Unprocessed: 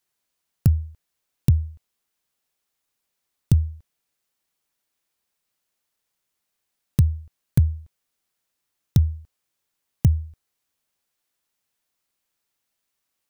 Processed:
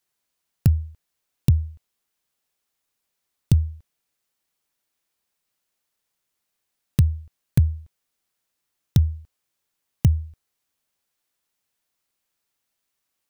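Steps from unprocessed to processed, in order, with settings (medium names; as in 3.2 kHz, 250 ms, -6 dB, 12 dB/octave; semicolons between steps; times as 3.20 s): dynamic bell 2.8 kHz, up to +5 dB, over -57 dBFS, Q 0.85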